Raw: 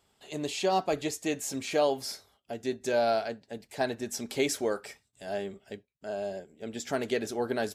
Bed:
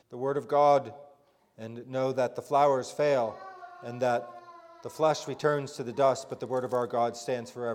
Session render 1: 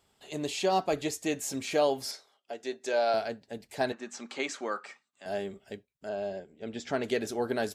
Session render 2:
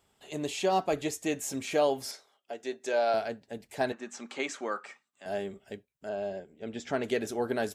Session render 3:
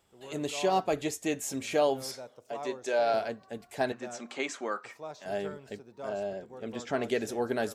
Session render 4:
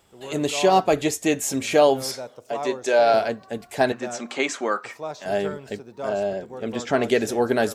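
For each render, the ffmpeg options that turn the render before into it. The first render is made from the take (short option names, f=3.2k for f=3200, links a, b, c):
-filter_complex "[0:a]asettb=1/sr,asplit=3[a][b][c];[a]atrim=end=2.114[d];[b]atrim=start=2.11:end=3.14,asetpts=PTS-STARTPTS,afade=t=in:d=0.004:c=qsin,afade=t=out:st=1.026:d=0.004:c=qsin,highpass=400,lowpass=7.9k[e];[c]atrim=start=3.136[f];[d][e]acrossfade=d=0.004:c1=hsin:c2=qsin[g];[g][f]acrossfade=d=0.004:c1=qsin:c2=hsin,asettb=1/sr,asplit=3[h][i][j];[h]atrim=end=3.924[k];[i]atrim=start=3.92:end=5.26,asetpts=PTS-STARTPTS,afade=t=in:d=0.004:c=qsin,afade=t=out:st=1.336:d=0.004:c=qsin,highpass=f=240:w=0.5412,highpass=f=240:w=1.3066,equalizer=f=290:t=q:w=4:g=-6,equalizer=f=430:t=q:w=4:g=-10,equalizer=f=640:t=q:w=4:g=-5,equalizer=f=1.2k:t=q:w=4:g=9,equalizer=f=3.5k:t=q:w=4:g=-4,equalizer=f=5.3k:t=q:w=4:g=-9,lowpass=f=6.5k:w=0.5412,lowpass=f=6.5k:w=1.3066[l];[j]atrim=start=5.256[m];[k][l]acrossfade=d=0.004:c1=hsin:c2=qsin[n];[n][m]acrossfade=d=0.004:c1=qsin:c2=hsin,asettb=1/sr,asplit=3[o][p][q];[o]atrim=end=6.094[r];[p]atrim=start=6.09:end=7.04,asetpts=PTS-STARTPTS,afade=t=in:d=0.004:c=qsin,afade=t=out:st=0.946:d=0.004:c=qsin,lowpass=5k[s];[q]atrim=start=7.036[t];[r][s]acrossfade=d=0.004:c1=hsin:c2=qsin[u];[u][t]acrossfade=d=0.004:c1=qsin:c2=hsin"
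-af "equalizer=f=4.5k:w=2.6:g=-4.5"
-filter_complex "[1:a]volume=-17dB[a];[0:a][a]amix=inputs=2:normalize=0"
-af "volume=9.5dB"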